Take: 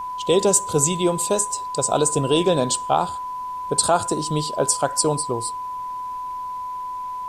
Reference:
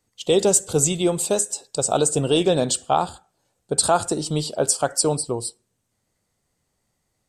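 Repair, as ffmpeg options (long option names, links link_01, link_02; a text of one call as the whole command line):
ffmpeg -i in.wav -af "bandreject=frequency=1000:width=30,agate=range=-21dB:threshold=-22dB" out.wav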